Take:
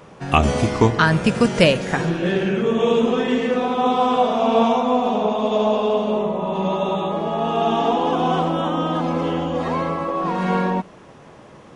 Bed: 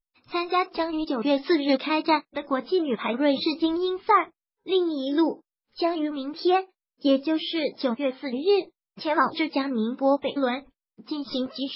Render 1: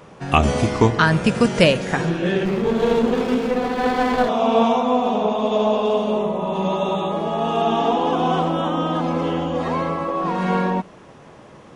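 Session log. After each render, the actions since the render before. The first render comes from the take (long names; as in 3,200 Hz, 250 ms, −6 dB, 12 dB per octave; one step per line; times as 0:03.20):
0:00.77–0:01.26: floating-point word with a short mantissa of 8 bits
0:02.45–0:04.29: windowed peak hold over 17 samples
0:05.85–0:07.62: high-shelf EQ 8,100 Hz +9 dB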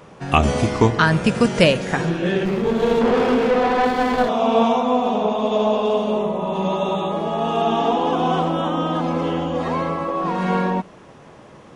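0:03.01–0:03.85: mid-hump overdrive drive 19 dB, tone 2,000 Hz, clips at −8.5 dBFS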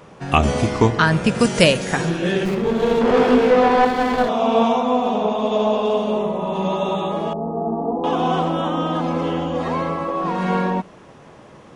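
0:01.39–0:02.55: high-shelf EQ 5,800 Hz +11.5 dB
0:03.07–0:03.85: double-tracking delay 20 ms −3 dB
0:07.33–0:08.04: Gaussian smoothing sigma 11 samples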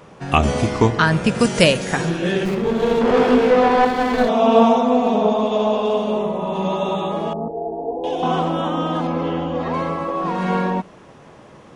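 0:04.13–0:05.44: comb filter 4.5 ms
0:07.48–0:08.23: phaser with its sweep stopped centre 500 Hz, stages 4
0:09.07–0:09.74: high-frequency loss of the air 110 metres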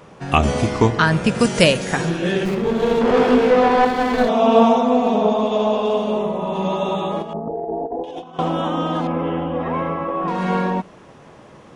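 0:07.22–0:08.39: compressor whose output falls as the input rises −27 dBFS, ratio −0.5
0:09.07–0:10.28: Savitzky-Golay smoothing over 25 samples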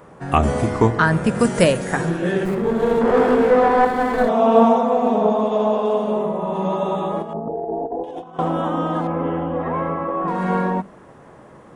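flat-topped bell 3,900 Hz −8.5 dB
mains-hum notches 50/100/150/200/250 Hz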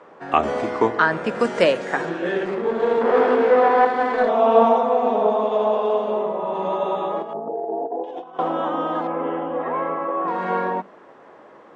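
Butterworth low-pass 9,100 Hz 36 dB per octave
three-way crossover with the lows and the highs turned down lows −22 dB, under 270 Hz, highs −19 dB, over 5,300 Hz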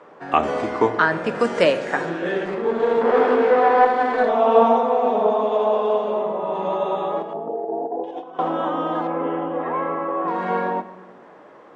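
rectangular room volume 1,200 cubic metres, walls mixed, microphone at 0.41 metres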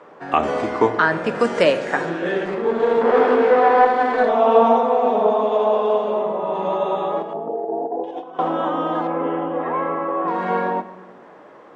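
level +1.5 dB
brickwall limiter −3 dBFS, peak gain reduction 2 dB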